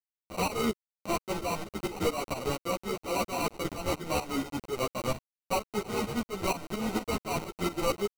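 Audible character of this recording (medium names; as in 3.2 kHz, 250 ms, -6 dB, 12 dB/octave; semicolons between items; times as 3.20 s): a quantiser's noise floor 6-bit, dither none; tremolo saw up 4.3 Hz, depth 85%; aliases and images of a low sample rate 1.7 kHz, jitter 0%; a shimmering, thickened sound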